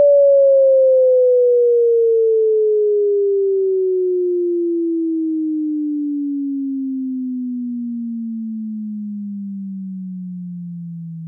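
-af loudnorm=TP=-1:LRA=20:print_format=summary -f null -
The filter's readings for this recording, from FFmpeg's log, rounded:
Input Integrated:    -17.4 LUFS
Input True Peak:      -6.8 dBTP
Input LRA:            13.3 LU
Input Threshold:     -28.3 LUFS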